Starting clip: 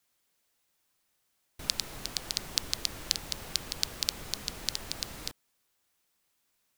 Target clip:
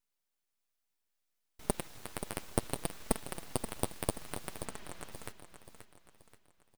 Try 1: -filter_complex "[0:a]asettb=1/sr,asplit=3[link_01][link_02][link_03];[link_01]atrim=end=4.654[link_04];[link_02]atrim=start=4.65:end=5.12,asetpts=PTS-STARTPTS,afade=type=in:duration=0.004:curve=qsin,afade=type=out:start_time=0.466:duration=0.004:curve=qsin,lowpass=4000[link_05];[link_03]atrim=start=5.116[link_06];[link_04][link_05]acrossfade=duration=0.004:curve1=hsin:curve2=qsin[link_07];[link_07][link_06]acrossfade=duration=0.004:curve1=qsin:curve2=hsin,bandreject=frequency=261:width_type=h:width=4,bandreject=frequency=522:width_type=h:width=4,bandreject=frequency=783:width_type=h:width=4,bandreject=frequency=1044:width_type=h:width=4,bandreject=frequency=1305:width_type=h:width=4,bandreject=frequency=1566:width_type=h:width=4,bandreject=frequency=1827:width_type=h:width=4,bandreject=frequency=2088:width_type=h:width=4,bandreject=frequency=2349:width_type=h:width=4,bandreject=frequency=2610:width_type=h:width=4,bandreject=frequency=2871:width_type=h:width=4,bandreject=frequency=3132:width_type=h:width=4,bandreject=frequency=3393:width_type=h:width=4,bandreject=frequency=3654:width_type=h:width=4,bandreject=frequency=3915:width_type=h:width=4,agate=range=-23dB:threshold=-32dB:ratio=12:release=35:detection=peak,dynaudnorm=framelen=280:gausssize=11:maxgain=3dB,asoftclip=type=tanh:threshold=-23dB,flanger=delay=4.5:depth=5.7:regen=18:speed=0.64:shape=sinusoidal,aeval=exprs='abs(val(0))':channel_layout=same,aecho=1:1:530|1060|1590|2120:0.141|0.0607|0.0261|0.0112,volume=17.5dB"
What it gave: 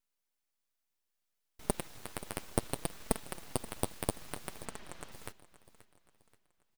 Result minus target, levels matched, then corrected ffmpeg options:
echo-to-direct −7 dB
-filter_complex "[0:a]asettb=1/sr,asplit=3[link_01][link_02][link_03];[link_01]atrim=end=4.654[link_04];[link_02]atrim=start=4.65:end=5.12,asetpts=PTS-STARTPTS,afade=type=in:duration=0.004:curve=qsin,afade=type=out:start_time=0.466:duration=0.004:curve=qsin,lowpass=4000[link_05];[link_03]atrim=start=5.116[link_06];[link_04][link_05]acrossfade=duration=0.004:curve1=hsin:curve2=qsin[link_07];[link_07][link_06]acrossfade=duration=0.004:curve1=qsin:curve2=hsin,bandreject=frequency=261:width_type=h:width=4,bandreject=frequency=522:width_type=h:width=4,bandreject=frequency=783:width_type=h:width=4,bandreject=frequency=1044:width_type=h:width=4,bandreject=frequency=1305:width_type=h:width=4,bandreject=frequency=1566:width_type=h:width=4,bandreject=frequency=1827:width_type=h:width=4,bandreject=frequency=2088:width_type=h:width=4,bandreject=frequency=2349:width_type=h:width=4,bandreject=frequency=2610:width_type=h:width=4,bandreject=frequency=2871:width_type=h:width=4,bandreject=frequency=3132:width_type=h:width=4,bandreject=frequency=3393:width_type=h:width=4,bandreject=frequency=3654:width_type=h:width=4,bandreject=frequency=3915:width_type=h:width=4,agate=range=-23dB:threshold=-32dB:ratio=12:release=35:detection=peak,dynaudnorm=framelen=280:gausssize=11:maxgain=3dB,asoftclip=type=tanh:threshold=-23dB,flanger=delay=4.5:depth=5.7:regen=18:speed=0.64:shape=sinusoidal,aeval=exprs='abs(val(0))':channel_layout=same,aecho=1:1:530|1060|1590|2120|2650:0.316|0.136|0.0585|0.0251|0.0108,volume=17.5dB"

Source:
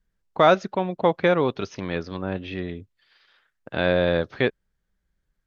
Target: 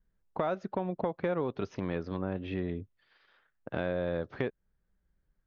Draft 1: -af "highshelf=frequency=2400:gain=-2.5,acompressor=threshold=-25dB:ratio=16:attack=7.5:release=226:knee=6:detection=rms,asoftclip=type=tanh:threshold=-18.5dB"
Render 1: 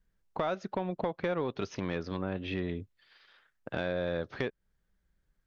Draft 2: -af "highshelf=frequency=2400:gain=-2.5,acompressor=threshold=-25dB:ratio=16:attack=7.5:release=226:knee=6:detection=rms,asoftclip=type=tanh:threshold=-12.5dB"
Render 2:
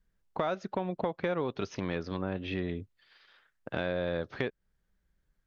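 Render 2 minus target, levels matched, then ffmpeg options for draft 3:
4,000 Hz band +7.0 dB
-af "highshelf=frequency=2400:gain=-14,acompressor=threshold=-25dB:ratio=16:attack=7.5:release=226:knee=6:detection=rms,asoftclip=type=tanh:threshold=-12.5dB"

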